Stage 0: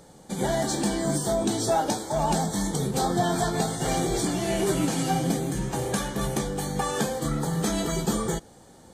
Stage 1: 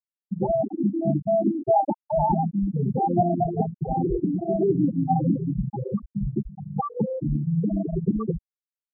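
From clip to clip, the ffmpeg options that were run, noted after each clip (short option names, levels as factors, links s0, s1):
-af "acontrast=78,afftfilt=real='re*gte(hypot(re,im),0.562)':imag='im*gte(hypot(re,im),0.562)':win_size=1024:overlap=0.75,volume=0.841"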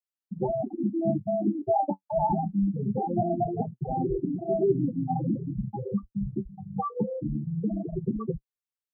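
-af "flanger=delay=7.6:depth=2.9:regen=40:speed=0.23:shape=sinusoidal"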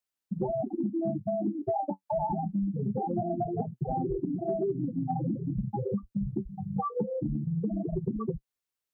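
-af "acompressor=threshold=0.0251:ratio=6,volume=1.68"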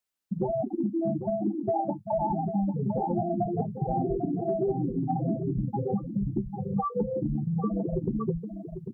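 -af "aecho=1:1:797:0.355,volume=1.26"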